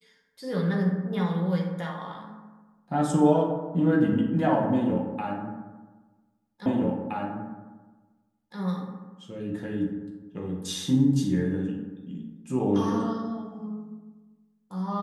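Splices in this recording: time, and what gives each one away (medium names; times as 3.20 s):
6.66 s: repeat of the last 1.92 s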